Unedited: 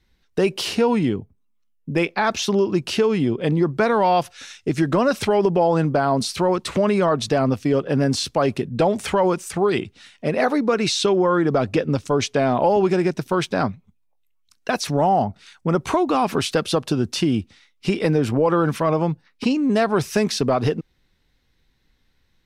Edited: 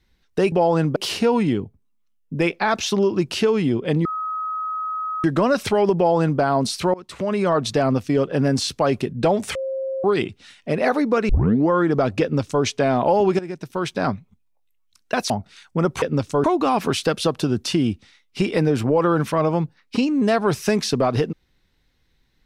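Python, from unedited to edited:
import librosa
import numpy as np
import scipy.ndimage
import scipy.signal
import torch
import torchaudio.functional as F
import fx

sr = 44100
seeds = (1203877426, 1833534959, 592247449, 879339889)

y = fx.edit(x, sr, fx.bleep(start_s=3.61, length_s=1.19, hz=1270.0, db=-23.5),
    fx.duplicate(start_s=5.52, length_s=0.44, to_s=0.52),
    fx.fade_in_from(start_s=6.5, length_s=0.61, floor_db=-23.0),
    fx.bleep(start_s=9.11, length_s=0.49, hz=533.0, db=-23.0),
    fx.tape_start(start_s=10.85, length_s=0.41),
    fx.duplicate(start_s=11.78, length_s=0.42, to_s=15.92),
    fx.fade_in_from(start_s=12.95, length_s=0.74, floor_db=-15.0),
    fx.cut(start_s=14.86, length_s=0.34), tone=tone)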